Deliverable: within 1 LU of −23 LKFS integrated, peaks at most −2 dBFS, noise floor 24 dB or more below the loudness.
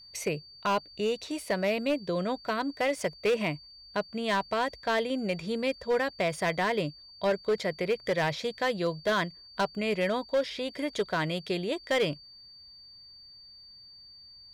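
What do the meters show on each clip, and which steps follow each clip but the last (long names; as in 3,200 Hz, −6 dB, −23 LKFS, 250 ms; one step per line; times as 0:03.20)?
share of clipped samples 1.1%; peaks flattened at −21.0 dBFS; interfering tone 4,600 Hz; level of the tone −49 dBFS; integrated loudness −30.0 LKFS; sample peak −21.0 dBFS; target loudness −23.0 LKFS
→ clipped peaks rebuilt −21 dBFS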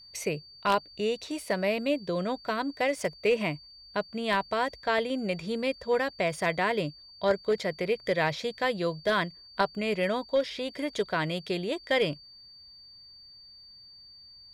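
share of clipped samples 0.0%; interfering tone 4,600 Hz; level of the tone −49 dBFS
→ notch filter 4,600 Hz, Q 30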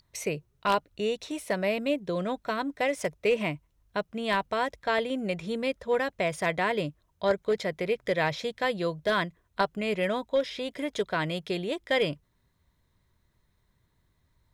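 interfering tone none found; integrated loudness −29.5 LKFS; sample peak −12.0 dBFS; target loudness −23.0 LKFS
→ level +6.5 dB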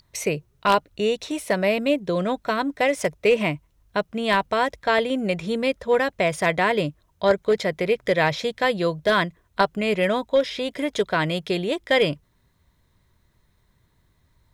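integrated loudness −23.0 LKFS; sample peak −5.5 dBFS; background noise floor −65 dBFS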